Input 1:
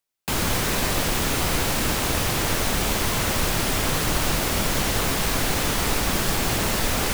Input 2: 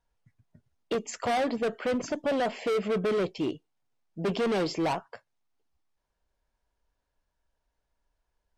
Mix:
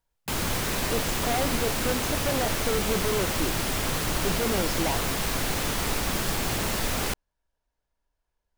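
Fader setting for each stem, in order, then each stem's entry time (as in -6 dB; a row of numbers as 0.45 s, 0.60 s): -4.5 dB, -2.0 dB; 0.00 s, 0.00 s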